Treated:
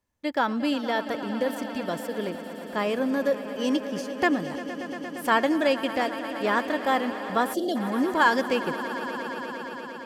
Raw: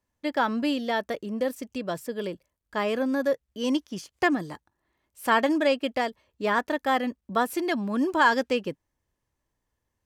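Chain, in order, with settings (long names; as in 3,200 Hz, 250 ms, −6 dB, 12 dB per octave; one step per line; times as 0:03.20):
echo that builds up and dies away 116 ms, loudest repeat 5, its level −16 dB
gain on a spectral selection 0:07.54–0:07.76, 760–2,800 Hz −23 dB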